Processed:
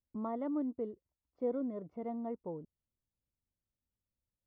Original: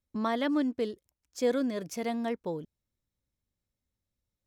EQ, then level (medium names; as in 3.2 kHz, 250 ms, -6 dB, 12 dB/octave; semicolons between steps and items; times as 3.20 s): Savitzky-Golay filter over 65 samples; distance through air 320 m; -6.5 dB